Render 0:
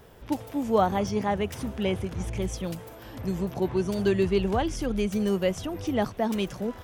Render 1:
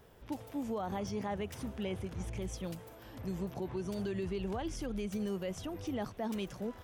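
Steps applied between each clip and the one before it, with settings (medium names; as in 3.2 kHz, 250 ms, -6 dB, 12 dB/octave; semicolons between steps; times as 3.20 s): peak limiter -21 dBFS, peak gain reduction 10.5 dB; trim -8 dB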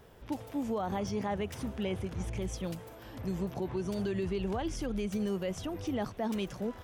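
treble shelf 10 kHz -3.5 dB; trim +3.5 dB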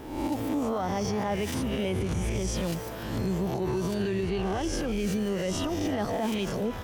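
reverse spectral sustain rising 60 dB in 0.78 s; peak limiter -30.5 dBFS, peak gain reduction 9.5 dB; on a send at -15 dB: reverberation, pre-delay 3 ms; on the sum: trim +9 dB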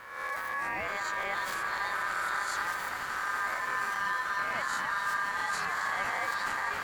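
transient shaper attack -4 dB, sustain +5 dB; echo with a slow build-up 86 ms, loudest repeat 8, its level -15 dB; ring modulator 1.4 kHz; trim -2.5 dB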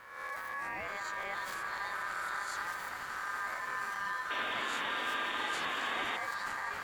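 painted sound noise, 4.30–6.17 s, 220–3800 Hz -34 dBFS; trim -5.5 dB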